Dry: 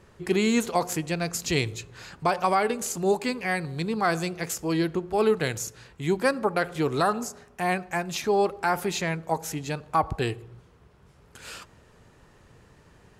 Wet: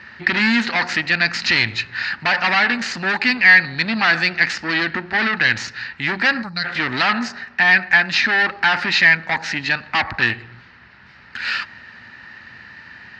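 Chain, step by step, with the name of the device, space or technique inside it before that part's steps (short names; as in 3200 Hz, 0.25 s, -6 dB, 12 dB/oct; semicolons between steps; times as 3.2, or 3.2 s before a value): notch 3300 Hz, Q 24; spectral gain 6.43–6.65, 210–3800 Hz -19 dB; guitar amplifier (tube stage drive 29 dB, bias 0.45; tone controls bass +2 dB, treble +12 dB; speaker cabinet 88–4100 Hz, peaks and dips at 150 Hz -5 dB, 230 Hz +8 dB, 440 Hz -9 dB, 1100 Hz -10 dB, 1800 Hz +10 dB, 3400 Hz -8 dB); band shelf 2100 Hz +14.5 dB 2.8 oct; gain +5.5 dB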